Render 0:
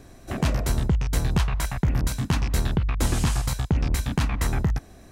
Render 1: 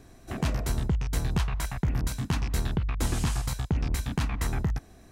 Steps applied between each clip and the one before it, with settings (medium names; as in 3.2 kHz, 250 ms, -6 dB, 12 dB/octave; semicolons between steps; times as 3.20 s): band-stop 560 Hz, Q 12; trim -4.5 dB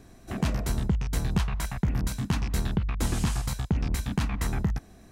peaking EQ 200 Hz +5.5 dB 0.35 oct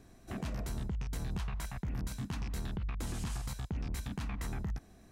peak limiter -23 dBFS, peak gain reduction 8.5 dB; trim -6.5 dB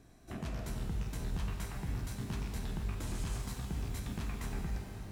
pitch-shifted reverb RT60 3.4 s, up +12 st, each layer -8 dB, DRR 2.5 dB; trim -2.5 dB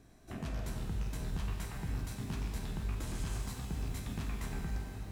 feedback comb 52 Hz, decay 1.7 s, harmonics all, mix 70%; trim +8.5 dB